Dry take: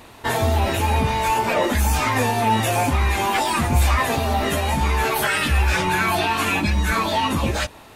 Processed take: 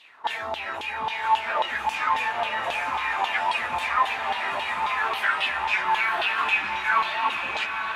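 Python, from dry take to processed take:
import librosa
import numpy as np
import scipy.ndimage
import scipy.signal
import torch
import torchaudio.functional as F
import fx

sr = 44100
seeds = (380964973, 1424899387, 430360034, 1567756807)

y = fx.filter_lfo_bandpass(x, sr, shape='saw_down', hz=3.7, low_hz=840.0, high_hz=3400.0, q=4.3)
y = fx.echo_diffused(y, sr, ms=959, feedback_pct=52, wet_db=-5.5)
y = y * 10.0 ** (4.0 / 20.0)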